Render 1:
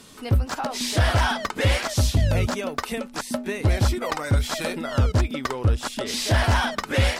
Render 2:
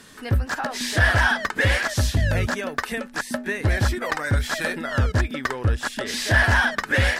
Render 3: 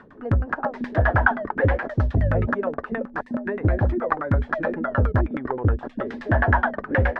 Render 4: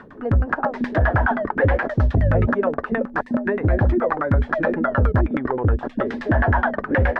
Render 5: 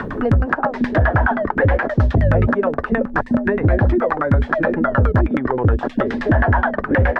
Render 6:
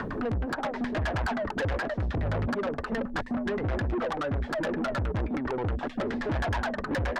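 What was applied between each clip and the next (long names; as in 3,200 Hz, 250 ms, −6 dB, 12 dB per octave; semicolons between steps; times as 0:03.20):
parametric band 1,700 Hz +13.5 dB 0.34 octaves; level −1 dB
auto-filter low-pass saw down 9.5 Hz 250–1,500 Hz
brickwall limiter −14.5 dBFS, peak gain reduction 11.5 dB; level +5.5 dB
multiband upward and downward compressor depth 70%; level +2.5 dB
soft clipping −20 dBFS, distortion −7 dB; level −6 dB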